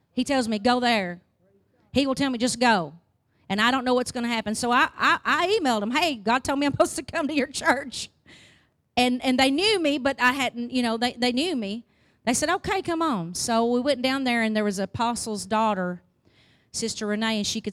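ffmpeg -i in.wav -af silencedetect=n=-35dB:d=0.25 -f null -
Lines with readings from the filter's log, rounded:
silence_start: 1.15
silence_end: 1.94 | silence_duration: 0.79
silence_start: 2.89
silence_end: 3.50 | silence_duration: 0.61
silence_start: 8.05
silence_end: 8.97 | silence_duration: 0.92
silence_start: 11.79
silence_end: 12.27 | silence_duration: 0.48
silence_start: 15.96
silence_end: 16.74 | silence_duration: 0.78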